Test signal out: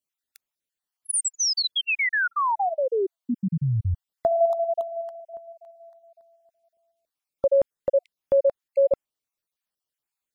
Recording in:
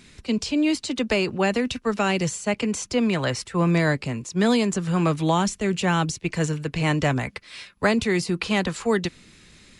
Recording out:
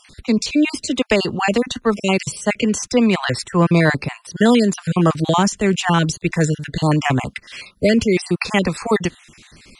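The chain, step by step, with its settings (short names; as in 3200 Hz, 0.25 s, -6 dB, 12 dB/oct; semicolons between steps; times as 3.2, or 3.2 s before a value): random spectral dropouts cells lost 37%; gain +7 dB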